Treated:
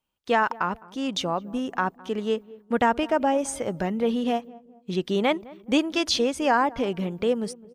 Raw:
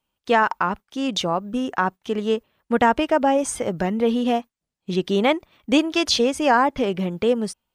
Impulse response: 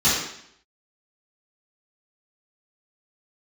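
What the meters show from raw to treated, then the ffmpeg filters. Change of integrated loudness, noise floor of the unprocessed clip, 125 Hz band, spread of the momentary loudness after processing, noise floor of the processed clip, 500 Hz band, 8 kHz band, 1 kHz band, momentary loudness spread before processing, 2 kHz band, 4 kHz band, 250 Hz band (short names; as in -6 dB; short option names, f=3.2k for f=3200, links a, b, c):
-4.0 dB, -85 dBFS, -4.0 dB, 8 LU, -59 dBFS, -4.0 dB, -4.0 dB, -4.0 dB, 8 LU, -4.0 dB, -4.0 dB, -4.0 dB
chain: -filter_complex "[0:a]asplit=2[a][b];[b]adelay=210,lowpass=f=840:p=1,volume=-19dB,asplit=2[c][d];[d]adelay=210,lowpass=f=840:p=1,volume=0.45,asplit=2[e][f];[f]adelay=210,lowpass=f=840:p=1,volume=0.45,asplit=2[g][h];[h]adelay=210,lowpass=f=840:p=1,volume=0.45[i];[a][c][e][g][i]amix=inputs=5:normalize=0,volume=-4dB"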